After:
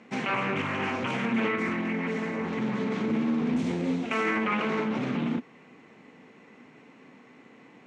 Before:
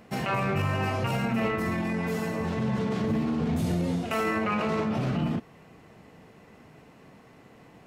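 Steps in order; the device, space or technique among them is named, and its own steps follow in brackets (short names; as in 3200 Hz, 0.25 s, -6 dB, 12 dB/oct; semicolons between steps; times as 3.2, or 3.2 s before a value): 1.72–2.53 high shelf 4400 Hz -6.5 dB; full-range speaker at full volume (Doppler distortion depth 0.38 ms; speaker cabinet 220–7100 Hz, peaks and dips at 250 Hz +7 dB, 660 Hz -6 dB, 2200 Hz +6 dB, 4900 Hz -6 dB)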